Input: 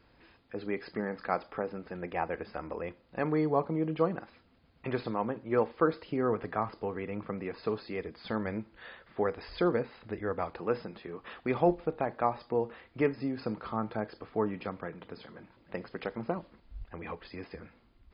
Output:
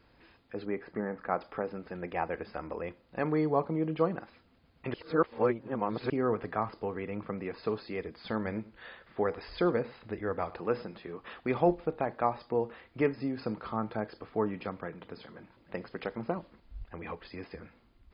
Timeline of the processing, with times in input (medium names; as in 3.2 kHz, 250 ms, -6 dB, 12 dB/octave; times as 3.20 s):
0.65–1.41 s: low-pass 1.8 kHz
4.94–6.10 s: reverse
8.33–11.14 s: delay 101 ms -19.5 dB